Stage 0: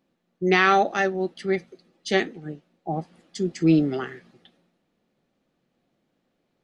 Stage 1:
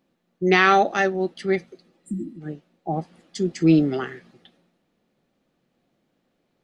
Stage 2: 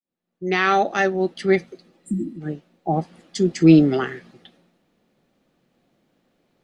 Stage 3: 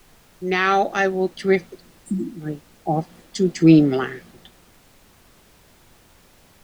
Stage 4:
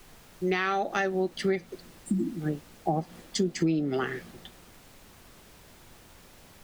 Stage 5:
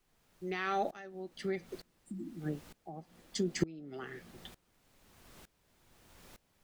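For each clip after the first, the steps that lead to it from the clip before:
spectral replace 2.06–2.39 s, 350–7200 Hz before; trim +2 dB
fade-in on the opening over 1.50 s; trim +4.5 dB
added noise pink -53 dBFS
compression 10:1, threshold -23 dBFS, peak gain reduction 16.5 dB
sawtooth tremolo in dB swelling 1.1 Hz, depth 23 dB; trim -1 dB

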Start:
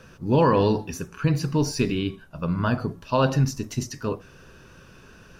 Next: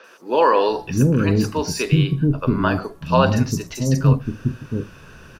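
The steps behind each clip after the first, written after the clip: three bands offset in time mids, highs, lows 40/680 ms, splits 370/5200 Hz; trim +6.5 dB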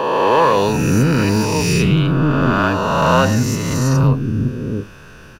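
reverse spectral sustain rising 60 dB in 2.31 s; in parallel at -6 dB: hard clipper -11.5 dBFS, distortion -12 dB; on the sum: trim -3.5 dB

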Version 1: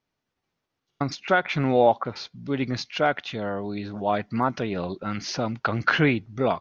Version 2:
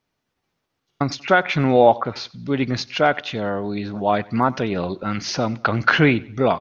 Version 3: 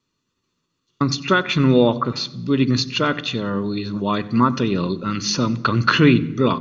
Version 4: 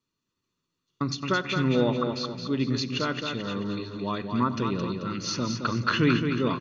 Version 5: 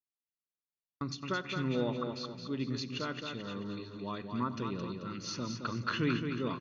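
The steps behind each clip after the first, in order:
feedback delay 93 ms, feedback 38%, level -22.5 dB; trim +5 dB
reverberation RT60 1.1 s, pre-delay 3 ms, DRR 17.5 dB; trim -1 dB
feedback delay 218 ms, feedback 42%, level -6 dB; trim -9 dB
gate with hold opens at -34 dBFS; trim -9 dB

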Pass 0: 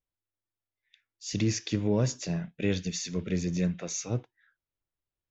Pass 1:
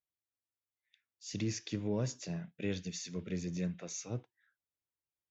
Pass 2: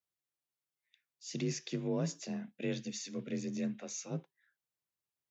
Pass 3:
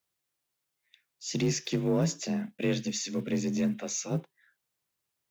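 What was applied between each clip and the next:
high-pass 75 Hz; trim -8 dB
frequency shift +37 Hz
block-companded coder 7-bit; in parallel at -3 dB: saturation -33.5 dBFS, distortion -12 dB; on the sum: trim +4.5 dB

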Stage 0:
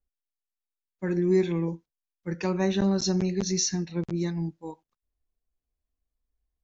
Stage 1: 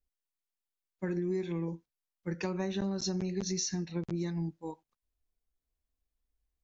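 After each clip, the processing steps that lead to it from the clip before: compression, threshold -28 dBFS, peak gain reduction 10 dB; trim -2 dB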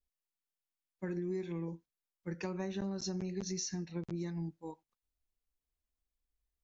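dynamic bell 3.7 kHz, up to -4 dB, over -57 dBFS, Q 3.1; trim -4.5 dB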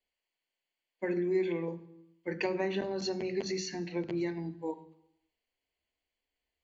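reverberation RT60 0.85 s, pre-delay 3 ms, DRR 12 dB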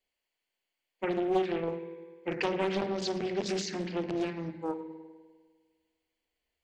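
spring tank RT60 1.6 s, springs 50 ms, chirp 65 ms, DRR 8 dB; loudspeaker Doppler distortion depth 0.55 ms; trim +2 dB

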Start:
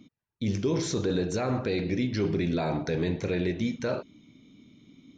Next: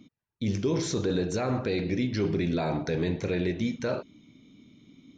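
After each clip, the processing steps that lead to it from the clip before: no audible change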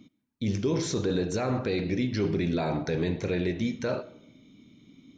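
reverberation RT60 0.75 s, pre-delay 35 ms, DRR 18 dB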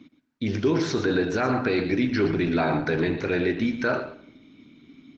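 cabinet simulation 120–5000 Hz, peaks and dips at 120 Hz -5 dB, 190 Hz -9 dB, 520 Hz -7 dB, 1.5 kHz +8 dB, 3.4 kHz -4 dB; delay 119 ms -11 dB; trim +7 dB; Opus 16 kbps 48 kHz

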